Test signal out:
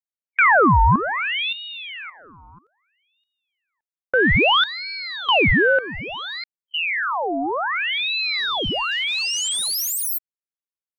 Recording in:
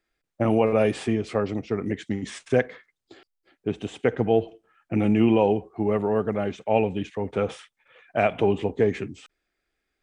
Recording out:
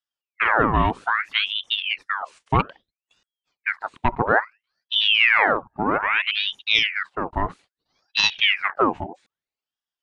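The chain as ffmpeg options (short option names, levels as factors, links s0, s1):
-af "afwtdn=0.0224,aeval=exprs='val(0)*sin(2*PI*1900*n/s+1900*0.75/0.61*sin(2*PI*0.61*n/s))':c=same,volume=1.68"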